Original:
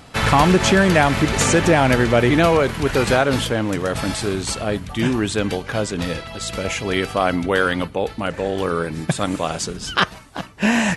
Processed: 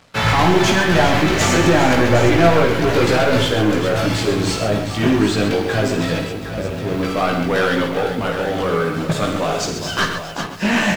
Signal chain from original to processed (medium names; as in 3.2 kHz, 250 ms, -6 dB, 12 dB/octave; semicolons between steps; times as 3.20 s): 6.27–7.03 s: median filter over 41 samples; high-pass 88 Hz 12 dB/octave; peaking EQ 9.5 kHz -14 dB 0.5 oct; waveshaping leveller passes 3; chorus voices 4, 0.24 Hz, delay 18 ms, depth 1.8 ms; on a send: multi-tap echo 53/85/127/406/763 ms -8.5/-12.5/-10.5/-11.5/-10.5 dB; on the sum: bit-crushed delay 138 ms, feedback 35%, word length 5-bit, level -12 dB; trim -5 dB